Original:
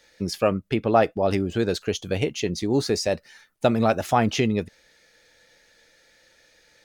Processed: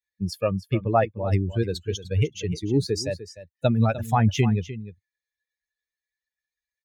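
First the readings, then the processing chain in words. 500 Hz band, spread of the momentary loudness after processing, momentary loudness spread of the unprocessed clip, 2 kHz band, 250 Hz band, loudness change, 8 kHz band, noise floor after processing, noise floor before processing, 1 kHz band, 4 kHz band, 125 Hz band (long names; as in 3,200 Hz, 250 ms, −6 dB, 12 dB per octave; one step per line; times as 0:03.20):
−4.0 dB, 11 LU, 7 LU, −4.0 dB, −1.5 dB, −1.0 dB, −3.5 dB, below −85 dBFS, −60 dBFS, −3.0 dB, −4.0 dB, +6.0 dB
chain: spectral dynamics exaggerated over time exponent 2
high-pass filter 47 Hz
parametric band 100 Hz +12 dB 1.2 octaves
single-tap delay 301 ms −14 dB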